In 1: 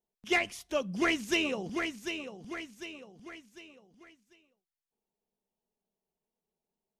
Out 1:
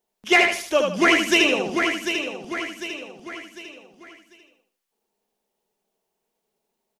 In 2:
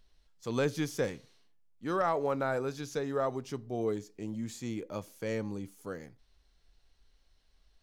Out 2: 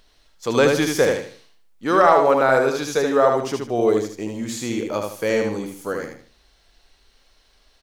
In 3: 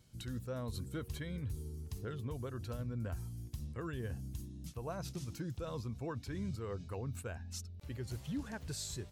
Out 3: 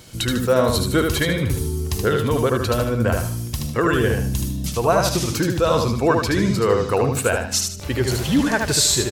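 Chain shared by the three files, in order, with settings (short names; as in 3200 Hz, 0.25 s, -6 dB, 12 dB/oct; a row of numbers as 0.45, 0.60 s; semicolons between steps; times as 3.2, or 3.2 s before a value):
tone controls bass -10 dB, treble -1 dB; on a send: feedback echo 76 ms, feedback 32%, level -4 dB; on the sum: match loudness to -20 LUFS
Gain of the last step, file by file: +11.5, +14.5, +25.5 dB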